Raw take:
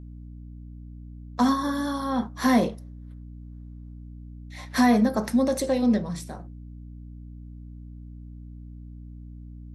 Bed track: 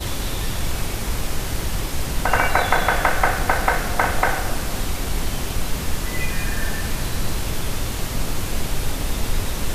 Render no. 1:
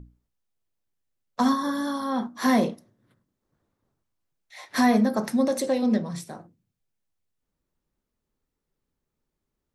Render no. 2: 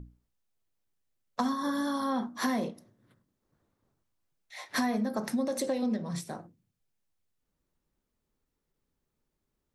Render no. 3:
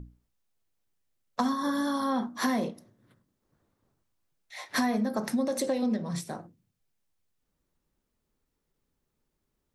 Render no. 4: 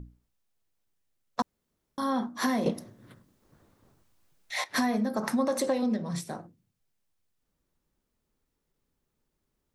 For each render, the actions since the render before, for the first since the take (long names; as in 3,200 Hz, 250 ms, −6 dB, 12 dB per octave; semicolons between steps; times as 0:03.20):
mains-hum notches 60/120/180/240/300 Hz
downward compressor 6 to 1, threshold −27 dBFS, peak gain reduction 11 dB; every ending faded ahead of time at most 240 dB per second
level +2 dB
0:01.42–0:01.98: fill with room tone; 0:02.66–0:04.64: clip gain +10.5 dB; 0:05.22–0:05.81: parametric band 1,100 Hz +12.5 dB → +5.5 dB 1.1 octaves